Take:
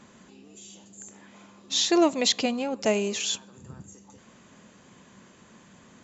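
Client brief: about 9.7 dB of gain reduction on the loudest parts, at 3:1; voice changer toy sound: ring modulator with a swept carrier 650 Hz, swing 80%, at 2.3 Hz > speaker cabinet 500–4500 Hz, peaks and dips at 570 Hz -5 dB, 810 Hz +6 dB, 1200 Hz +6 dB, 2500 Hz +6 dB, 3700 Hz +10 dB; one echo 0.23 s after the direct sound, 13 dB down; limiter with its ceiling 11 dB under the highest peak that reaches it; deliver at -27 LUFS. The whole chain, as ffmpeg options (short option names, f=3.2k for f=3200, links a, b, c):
-af "acompressor=threshold=-30dB:ratio=3,alimiter=level_in=5dB:limit=-24dB:level=0:latency=1,volume=-5dB,aecho=1:1:230:0.224,aeval=exprs='val(0)*sin(2*PI*650*n/s+650*0.8/2.3*sin(2*PI*2.3*n/s))':c=same,highpass=500,equalizer=f=570:t=q:w=4:g=-5,equalizer=f=810:t=q:w=4:g=6,equalizer=f=1.2k:t=q:w=4:g=6,equalizer=f=2.5k:t=q:w=4:g=6,equalizer=f=3.7k:t=q:w=4:g=10,lowpass=f=4.5k:w=0.5412,lowpass=f=4.5k:w=1.3066,volume=12.5dB"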